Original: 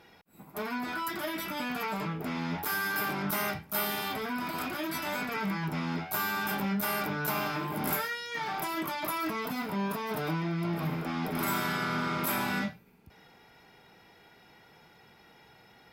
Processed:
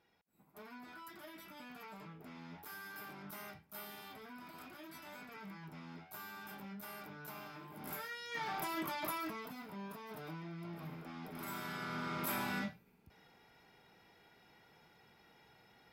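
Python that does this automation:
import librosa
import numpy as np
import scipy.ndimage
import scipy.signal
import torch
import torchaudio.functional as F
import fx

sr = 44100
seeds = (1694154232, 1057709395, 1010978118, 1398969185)

y = fx.gain(x, sr, db=fx.line((7.74, -18.0), (8.34, -6.0), (9.08, -6.0), (9.58, -15.0), (11.38, -15.0), (12.27, -7.5)))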